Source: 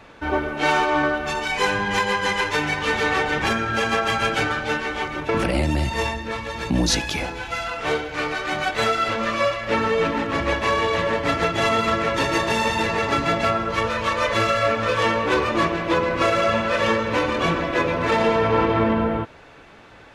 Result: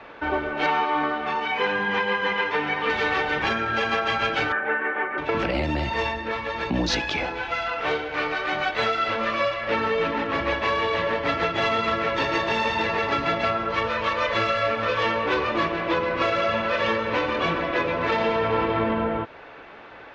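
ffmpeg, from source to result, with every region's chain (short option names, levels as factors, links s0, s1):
-filter_complex "[0:a]asettb=1/sr,asplit=3[s0][s1][s2];[s0]atrim=end=0.664[s3];[s1]atrim=start=0.66:end=2.9,asetpts=PTS-STARTPTS,afade=t=in:d=0.004:c=qsin,afade=t=out:st=2.236:d=0.004:c=qsin,highpass=100,lowpass=6900,aecho=1:1:4.3:0.51,atrim=end_sample=98784,acrossover=split=3100[s4][s5];[s5]acompressor=threshold=0.00631:ratio=4:attack=1:release=60[s6];[s4][s6]amix=inputs=2:normalize=0[s7];[s2]atrim=start=2.896[s8];[s3][s7]acrossfade=d=0.004:c1=hsin:c2=qsin[s9];[s9][s8]acrossfade=d=0.004:c1=qsin:c2=hsin,asettb=1/sr,asplit=3[s10][s11][s12];[s10]atrim=end=4.524[s13];[s11]atrim=start=4.52:end=5.18,asetpts=PTS-STARTPTS,afade=t=in:d=0.004:c=qsin,afade=t=out:st=0.656:d=0.004:c=qsin,highpass=f=150:w=0.5412,highpass=f=150:w=1.3066,equalizer=f=160:t=q:w=4:g=-7,equalizer=f=390:t=q:w=4:g=3,equalizer=f=1700:t=q:w=4:g=8,lowpass=f=2100:w=0.5412,lowpass=f=2100:w=1.3066,bandreject=f=50:t=h:w=6,bandreject=f=100:t=h:w=6,bandreject=f=150:t=h:w=6,bandreject=f=200:t=h:w=6,bandreject=f=250:t=h:w=6,bandreject=f=300:t=h:w=6,bandreject=f=350:t=h:w=6[s14];[s12]atrim=start=5.176[s15];[s13][s14]acrossfade=d=0.004:c1=hsin:c2=qsin[s16];[s16][s15]acrossfade=d=0.004:c1=qsin:c2=hsin,lowpass=f=5800:w=0.5412,lowpass=f=5800:w=1.3066,bass=f=250:g=-11,treble=f=4000:g=-13,acrossover=split=200|3000[s17][s18][s19];[s18]acompressor=threshold=0.0251:ratio=2[s20];[s17][s20][s19]amix=inputs=3:normalize=0,volume=1.68"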